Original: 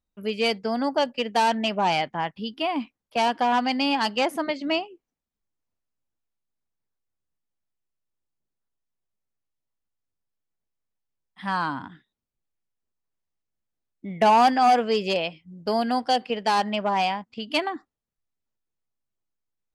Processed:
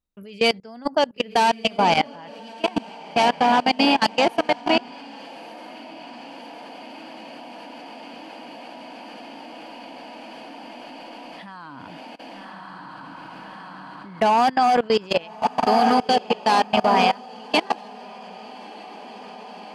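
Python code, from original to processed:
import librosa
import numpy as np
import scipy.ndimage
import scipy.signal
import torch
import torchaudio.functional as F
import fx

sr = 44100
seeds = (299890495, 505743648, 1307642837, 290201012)

p1 = x + fx.echo_diffused(x, sr, ms=1220, feedback_pct=69, wet_db=-5, dry=0)
p2 = fx.level_steps(p1, sr, step_db=23)
y = p2 * librosa.db_to_amplitude(6.5)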